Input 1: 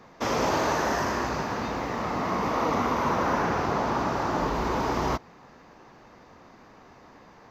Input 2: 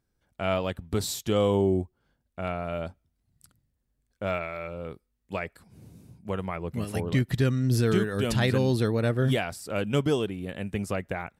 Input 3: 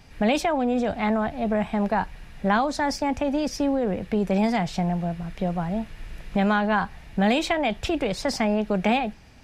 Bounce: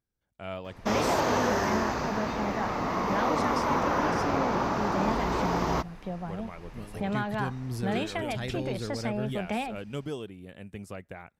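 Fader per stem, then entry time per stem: -1.5, -10.5, -9.5 dB; 0.65, 0.00, 0.65 s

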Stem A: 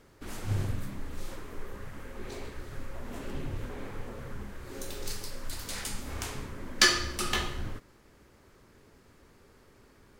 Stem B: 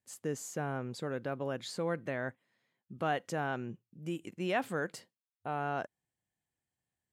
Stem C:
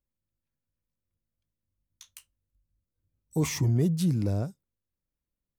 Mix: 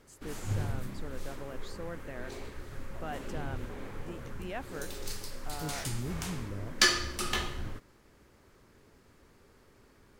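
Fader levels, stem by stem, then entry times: -2.0, -8.0, -13.5 dB; 0.00, 0.00, 2.25 s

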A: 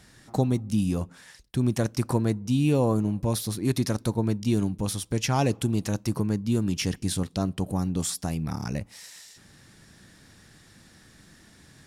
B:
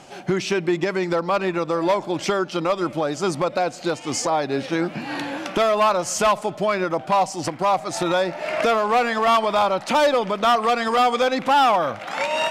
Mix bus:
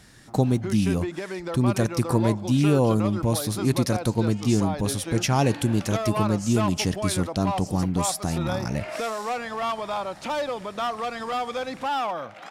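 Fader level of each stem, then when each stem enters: +2.5, -10.0 dB; 0.00, 0.35 s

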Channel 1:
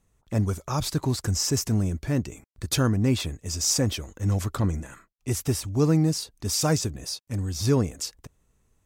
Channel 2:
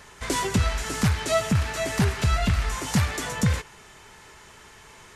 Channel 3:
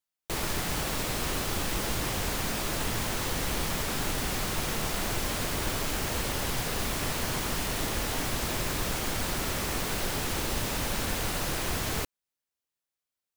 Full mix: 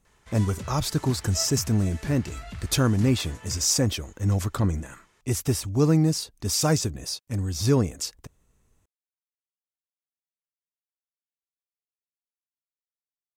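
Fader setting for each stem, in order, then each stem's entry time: +1.0 dB, -16.0 dB, off; 0.00 s, 0.05 s, off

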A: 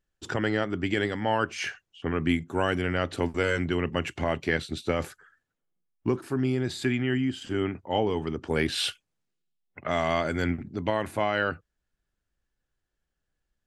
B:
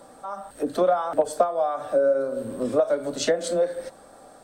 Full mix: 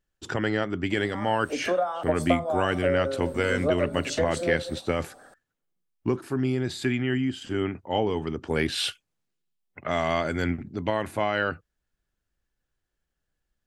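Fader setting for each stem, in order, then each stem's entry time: +0.5, -4.5 dB; 0.00, 0.90 s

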